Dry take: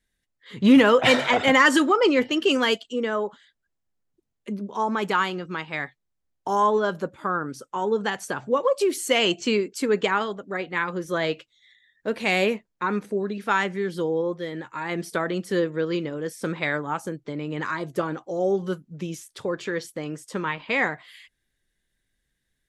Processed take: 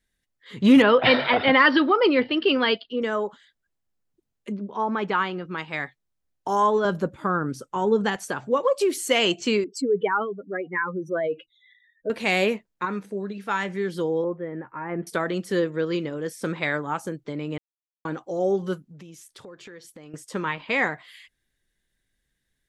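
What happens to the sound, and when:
0.82–3.02 steep low-pass 5000 Hz 96 dB/oct
4.52–5.58 air absorption 200 m
6.85–8.16 low shelf 260 Hz +9.5 dB
9.64–12.1 spectral contrast raised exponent 2.4
12.85–13.69 resonator 65 Hz, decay 0.23 s, harmonics odd, mix 50%
14.24–15.07 Bessel low-pass 1300 Hz, order 8
17.58–18.05 mute
18.8–20.14 compressor 4:1, threshold -43 dBFS

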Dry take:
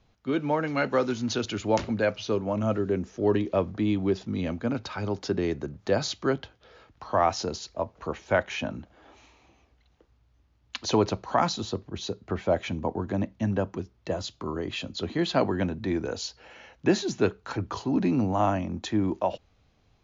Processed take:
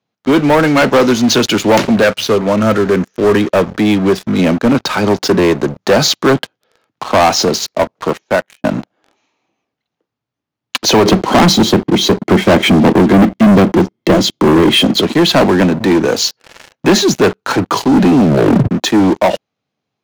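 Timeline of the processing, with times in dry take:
2.04–4.39 EQ curve 110 Hz 0 dB, 310 Hz -6 dB, 480 Hz -2 dB, 820 Hz -7 dB, 1500 Hz +3 dB, 2400 Hz -1 dB
7.94–8.64 fade out
11.05–15.01 small resonant body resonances 210/320/2100/3200 Hz, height 12 dB, ringing for 25 ms
18.2 tape stop 0.51 s
whole clip: HPF 140 Hz 24 dB/oct; sample leveller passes 5; gain +2.5 dB

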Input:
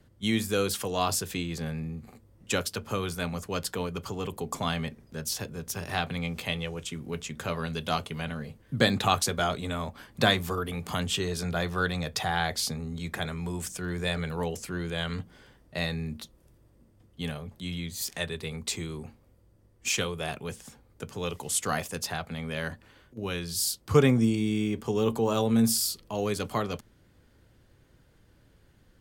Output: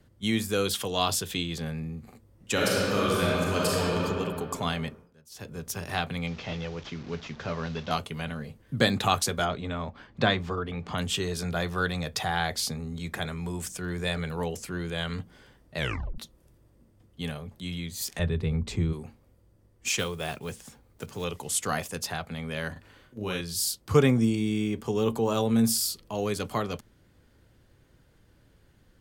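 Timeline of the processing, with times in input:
0.65–1.61 bell 3400 Hz +8.5 dB 0.44 oct
2.52–3.97 reverb throw, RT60 2.5 s, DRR -6 dB
4.89–5.55 dip -22 dB, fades 0.25 s
6.27–7.91 delta modulation 32 kbps, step -42 dBFS
9.45–10.98 air absorption 150 m
15.77 tape stop 0.41 s
18.19–18.93 RIAA curve playback
19.99–21.26 block floating point 5-bit
22.72–23.41 doubler 38 ms -3.5 dB

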